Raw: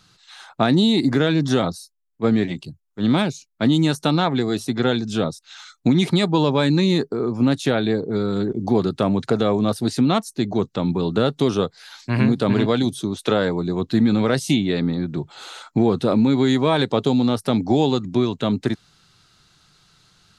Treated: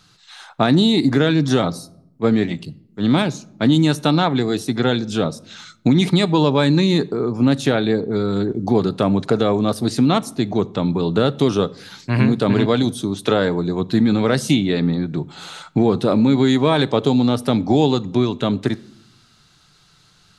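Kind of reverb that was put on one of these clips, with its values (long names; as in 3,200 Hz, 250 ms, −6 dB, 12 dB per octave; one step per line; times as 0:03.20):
rectangular room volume 2,000 cubic metres, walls furnished, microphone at 0.37 metres
level +2 dB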